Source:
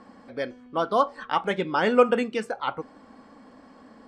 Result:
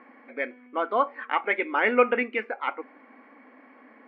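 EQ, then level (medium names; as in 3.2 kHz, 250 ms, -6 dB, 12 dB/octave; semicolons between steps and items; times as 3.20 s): brick-wall FIR high-pass 220 Hz; resonant low-pass 2.2 kHz, resonance Q 6.6; distance through air 200 m; -2.5 dB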